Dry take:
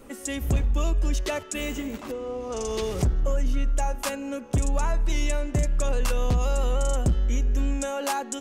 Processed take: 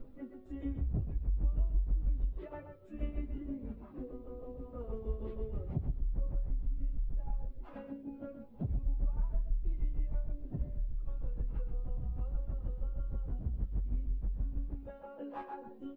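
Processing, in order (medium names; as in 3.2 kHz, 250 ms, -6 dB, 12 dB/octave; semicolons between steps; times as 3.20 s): reverb removal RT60 0.5 s; tilt EQ -4 dB/octave; de-hum 192.1 Hz, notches 8; peak limiter -4 dBFS, peak gain reduction 6 dB; compression 4:1, threshold -17 dBFS, peak gain reduction 9.5 dB; tremolo saw down 12 Hz, depth 95%; added noise violet -49 dBFS; feedback comb 260 Hz, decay 0.77 s, mix 50%; plain phase-vocoder stretch 1.9×; distance through air 500 m; delay 127 ms -9 dB; trim -3 dB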